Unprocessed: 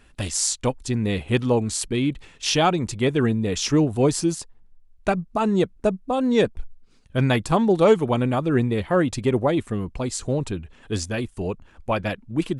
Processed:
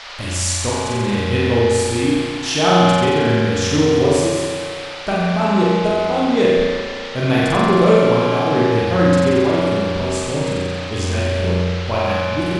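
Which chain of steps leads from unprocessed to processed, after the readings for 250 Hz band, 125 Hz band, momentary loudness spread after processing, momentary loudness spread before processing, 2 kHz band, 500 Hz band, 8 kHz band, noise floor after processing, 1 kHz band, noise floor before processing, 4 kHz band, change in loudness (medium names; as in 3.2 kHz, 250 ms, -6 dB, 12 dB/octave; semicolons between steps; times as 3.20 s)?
+4.5 dB, +5.5 dB, 8 LU, 9 LU, +8.5 dB, +7.0 dB, +2.5 dB, -28 dBFS, +7.5 dB, -53 dBFS, +7.0 dB, +5.5 dB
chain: flutter echo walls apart 7.7 m, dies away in 1.4 s; band noise 540–4900 Hz -34 dBFS; spring tank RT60 1.9 s, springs 34 ms, chirp 35 ms, DRR -2.5 dB; trim -2 dB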